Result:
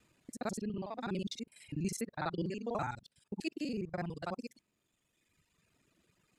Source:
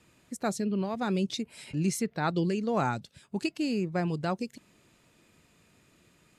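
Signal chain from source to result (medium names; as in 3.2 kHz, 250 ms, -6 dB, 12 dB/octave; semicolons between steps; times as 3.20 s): time reversed locally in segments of 41 ms; reverb removal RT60 1.8 s; trim -6.5 dB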